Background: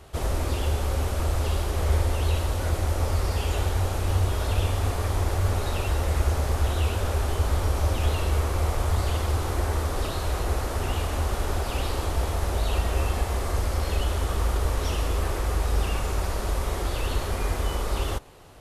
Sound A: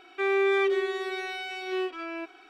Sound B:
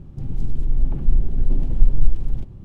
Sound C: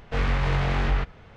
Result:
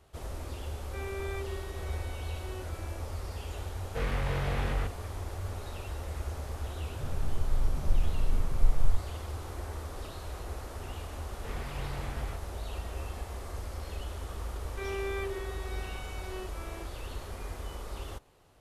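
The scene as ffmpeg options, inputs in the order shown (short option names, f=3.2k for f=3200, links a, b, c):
-filter_complex "[1:a]asplit=2[a][b];[3:a]asplit=2[c][d];[0:a]volume=-13dB[e];[c]equalizer=f=510:t=o:w=0.37:g=6.5[f];[2:a]acrossover=split=310[g][h];[g]adelay=480[i];[i][h]amix=inputs=2:normalize=0[j];[a]atrim=end=2.49,asetpts=PTS-STARTPTS,volume=-15.5dB,afade=t=in:d=0.004:c=hsin,afade=t=out:st=2.486:d=0.004:c=hsin,adelay=750[k];[f]atrim=end=1.36,asetpts=PTS-STARTPTS,volume=-8dB,afade=t=in:d=0.004:c=hsin,afade=t=out:st=1.356:d=0.004:c=hsin,adelay=3830[l];[j]atrim=end=2.64,asetpts=PTS-STARTPTS,volume=-9.5dB,afade=t=in:d=0.004:c=hsin,afade=t=out:st=2.636:d=0.004:c=hsin,adelay=279594S[m];[d]atrim=end=1.36,asetpts=PTS-STARTPTS,volume=-15.5dB,afade=t=in:d=0.004:c=hsin,afade=t=out:st=1.356:d=0.004:c=hsin,adelay=11320[n];[b]atrim=end=2.49,asetpts=PTS-STARTPTS,volume=-12dB,afade=t=in:d=0.004:c=hsin,afade=t=out:st=2.486:d=0.004:c=hsin,adelay=14590[o];[e][k][l][m][n][o]amix=inputs=6:normalize=0"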